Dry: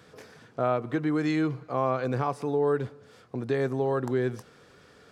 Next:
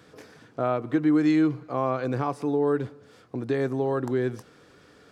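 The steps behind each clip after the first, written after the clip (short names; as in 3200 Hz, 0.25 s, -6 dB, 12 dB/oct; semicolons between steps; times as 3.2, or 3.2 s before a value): bell 300 Hz +7 dB 0.29 oct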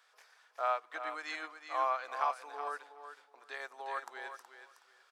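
HPF 800 Hz 24 dB/oct; on a send: feedback echo 0.371 s, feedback 23%, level -6.5 dB; on the sum: upward expander 1.5:1, over -47 dBFS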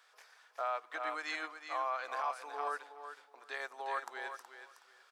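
limiter -28 dBFS, peak gain reduction 9 dB; gain +2 dB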